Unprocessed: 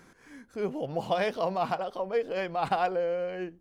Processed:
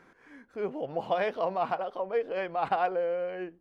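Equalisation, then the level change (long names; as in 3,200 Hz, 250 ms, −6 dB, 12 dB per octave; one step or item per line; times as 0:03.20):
bass and treble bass −8 dB, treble −15 dB
0.0 dB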